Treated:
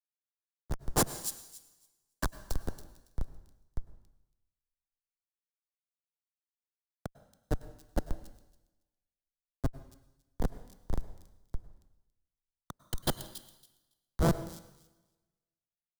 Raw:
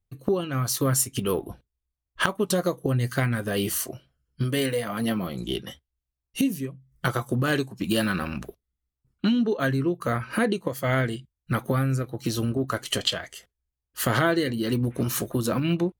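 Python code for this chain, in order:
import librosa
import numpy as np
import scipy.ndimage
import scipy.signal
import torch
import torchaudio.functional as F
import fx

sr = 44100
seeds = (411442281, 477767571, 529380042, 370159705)

y = fx.bin_expand(x, sr, power=1.5)
y = fx.peak_eq(y, sr, hz=180.0, db=-14.0, octaves=1.1)
y = fx.hum_notches(y, sr, base_hz=50, count=7)
y = fx.schmitt(y, sr, flips_db=-19.5)
y = fx.peak_eq(y, sr, hz=2500.0, db=-12.5, octaves=0.92)
y = fx.echo_wet_highpass(y, sr, ms=279, feedback_pct=38, hz=4000.0, wet_db=-5.0)
y = fx.rev_plate(y, sr, seeds[0], rt60_s=2.6, hf_ratio=0.95, predelay_ms=90, drr_db=9.5)
y = fx.band_widen(y, sr, depth_pct=100)
y = y * librosa.db_to_amplitude(3.5)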